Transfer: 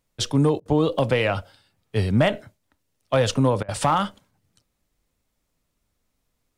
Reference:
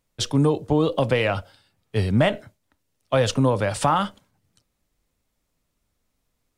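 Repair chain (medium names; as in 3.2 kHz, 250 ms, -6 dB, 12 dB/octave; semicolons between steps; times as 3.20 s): clip repair -10.5 dBFS; interpolate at 0.60/3.63 s, 55 ms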